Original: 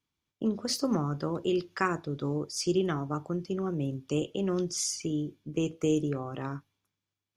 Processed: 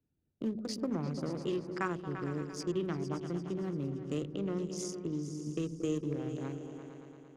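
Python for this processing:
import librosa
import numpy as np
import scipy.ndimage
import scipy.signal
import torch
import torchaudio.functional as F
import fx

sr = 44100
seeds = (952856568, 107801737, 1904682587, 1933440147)

y = fx.wiener(x, sr, points=41)
y = fx.high_shelf(y, sr, hz=11000.0, db=-10.0, at=(4.27, 4.74))
y = fx.echo_opening(y, sr, ms=114, hz=200, octaves=2, feedback_pct=70, wet_db=-6)
y = fx.band_squash(y, sr, depth_pct=40)
y = y * librosa.db_to_amplitude(-5.5)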